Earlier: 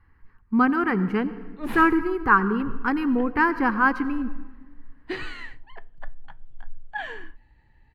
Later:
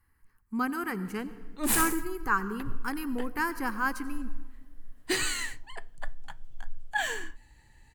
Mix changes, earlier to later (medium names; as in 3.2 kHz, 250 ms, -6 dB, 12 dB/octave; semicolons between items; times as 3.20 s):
speech -11.5 dB; master: remove distance through air 360 m